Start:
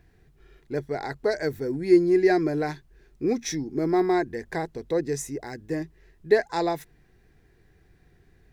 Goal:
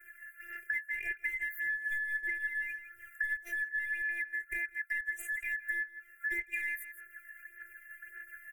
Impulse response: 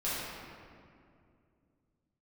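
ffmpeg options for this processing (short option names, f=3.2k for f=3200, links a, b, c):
-filter_complex "[0:a]afftfilt=real='real(if(lt(b,272),68*(eq(floor(b/68),0)*1+eq(floor(b/68),1)*0+eq(floor(b/68),2)*3+eq(floor(b/68),3)*2)+mod(b,68),b),0)':imag='imag(if(lt(b,272),68*(eq(floor(b/68),0)*1+eq(floor(b/68),1)*0+eq(floor(b/68),2)*3+eq(floor(b/68),3)*2)+mod(b,68),b),0)':win_size=2048:overlap=0.75,agate=range=-33dB:threshold=-53dB:ratio=3:detection=peak,afftfilt=real='hypot(re,im)*cos(PI*b)':imag='0':win_size=512:overlap=0.75,highshelf=f=7.1k:g=8.5,acrossover=split=410[a][b];[b]aeval=exprs='clip(val(0),-1,0.0237)':c=same[c];[a][c]amix=inputs=2:normalize=0,aphaser=in_gain=1:out_gain=1:delay=1.1:decay=0.57:speed=1.7:type=sinusoidal,acontrast=79,firequalizer=gain_entry='entry(110,0);entry(270,-22);entry(400,1);entry(570,-3);entry(1100,-28);entry(1600,13);entry(2400,9);entry(4200,-25);entry(8000,4);entry(12000,12)':delay=0.05:min_phase=1,asplit=2[d][e];[e]aecho=0:1:162:0.0944[f];[d][f]amix=inputs=2:normalize=0,acompressor=threshold=-33dB:ratio=16"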